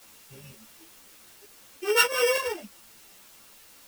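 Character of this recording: a buzz of ramps at a fixed pitch in blocks of 16 samples; chopped level 3.3 Hz, depth 65%, duty 80%; a quantiser's noise floor 8-bit, dither triangular; a shimmering, thickened sound

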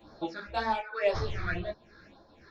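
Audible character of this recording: phasing stages 6, 1.9 Hz, lowest notch 720–2600 Hz; tremolo triangle 2.1 Hz, depth 65%; a shimmering, thickened sound

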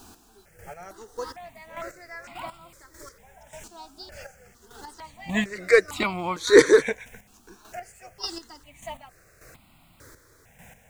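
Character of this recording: a quantiser's noise floor 10-bit, dither none; chopped level 1.7 Hz, depth 60%, duty 25%; notches that jump at a steady rate 2.2 Hz 540–1700 Hz

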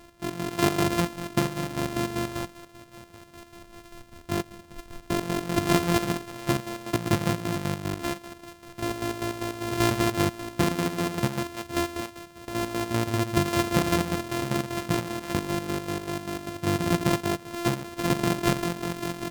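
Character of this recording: a buzz of ramps at a fixed pitch in blocks of 128 samples; chopped level 5.1 Hz, depth 60%, duty 50%; Vorbis

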